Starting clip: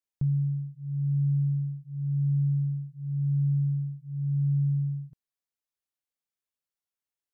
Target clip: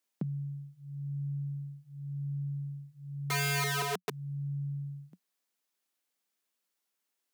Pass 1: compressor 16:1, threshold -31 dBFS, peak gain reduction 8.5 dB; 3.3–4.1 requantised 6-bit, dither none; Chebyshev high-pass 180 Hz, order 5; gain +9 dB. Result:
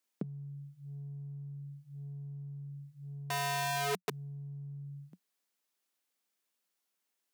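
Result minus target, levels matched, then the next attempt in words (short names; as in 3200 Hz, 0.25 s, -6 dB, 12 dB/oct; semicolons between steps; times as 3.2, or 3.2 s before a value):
compressor: peak gain reduction +8.5 dB
3.3–4.1 requantised 6-bit, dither none; Chebyshev high-pass 180 Hz, order 5; gain +9 dB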